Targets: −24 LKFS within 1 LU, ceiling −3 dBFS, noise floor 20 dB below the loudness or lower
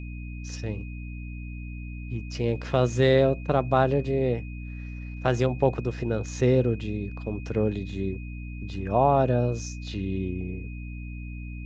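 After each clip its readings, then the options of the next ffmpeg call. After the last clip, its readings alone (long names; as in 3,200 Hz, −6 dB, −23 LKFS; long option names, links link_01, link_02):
mains hum 60 Hz; hum harmonics up to 300 Hz; level of the hum −33 dBFS; interfering tone 2,500 Hz; level of the tone −47 dBFS; integrated loudness −26.5 LKFS; sample peak −7.5 dBFS; target loudness −24.0 LKFS
→ -af "bandreject=frequency=60:width_type=h:width=6,bandreject=frequency=120:width_type=h:width=6,bandreject=frequency=180:width_type=h:width=6,bandreject=frequency=240:width_type=h:width=6,bandreject=frequency=300:width_type=h:width=6"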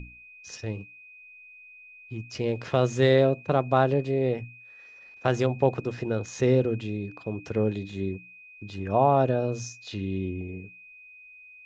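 mains hum none found; interfering tone 2,500 Hz; level of the tone −47 dBFS
→ -af "bandreject=frequency=2500:width=30"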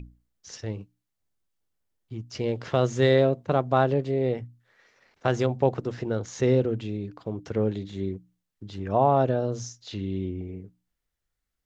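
interfering tone none found; integrated loudness −26.5 LKFS; sample peak −8.0 dBFS; target loudness −24.0 LKFS
→ -af "volume=2.5dB"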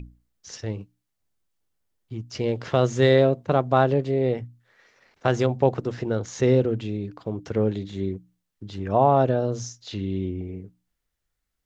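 integrated loudness −24.0 LKFS; sample peak −5.5 dBFS; background noise floor −80 dBFS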